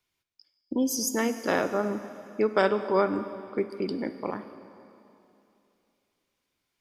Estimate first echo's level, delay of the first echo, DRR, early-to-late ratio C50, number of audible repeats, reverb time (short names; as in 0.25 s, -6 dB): none, none, 10.0 dB, 11.0 dB, none, 2.8 s